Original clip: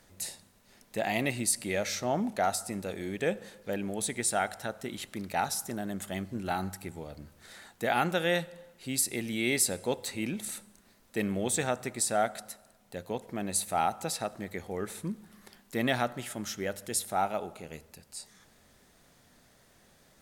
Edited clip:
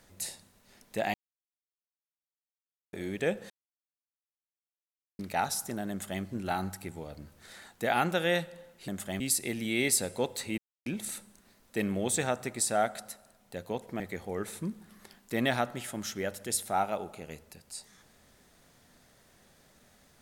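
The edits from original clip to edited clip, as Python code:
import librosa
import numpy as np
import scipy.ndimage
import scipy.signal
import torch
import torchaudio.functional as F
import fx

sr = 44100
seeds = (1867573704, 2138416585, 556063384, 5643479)

y = fx.edit(x, sr, fx.silence(start_s=1.14, length_s=1.79),
    fx.silence(start_s=3.5, length_s=1.69),
    fx.duplicate(start_s=5.9, length_s=0.32, to_s=8.88),
    fx.insert_silence(at_s=10.26, length_s=0.28),
    fx.cut(start_s=13.4, length_s=1.02), tone=tone)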